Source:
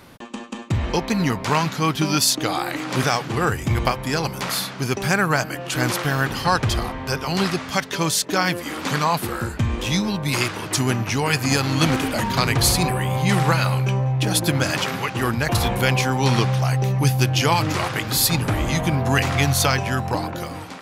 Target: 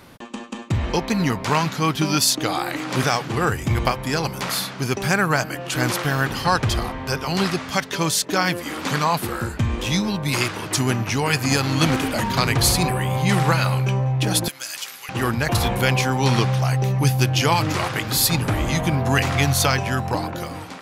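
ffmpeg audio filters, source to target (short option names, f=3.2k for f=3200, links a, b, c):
-filter_complex "[0:a]asettb=1/sr,asplit=3[a][b][c];[a]atrim=end=14.484[d];[b]atrim=start=14.48:end=15.09,asetpts=PTS-STARTPTS,afade=t=in:d=0.004:c=qsin,afade=t=out:st=0.606:d=0.004:c=qsin,aderivative[e];[c]atrim=start=15.086[f];[d][e]acrossfade=d=0.004:c1=hsin:c2=qsin[g];[g][f]acrossfade=d=0.004:c1=qsin:c2=hsin"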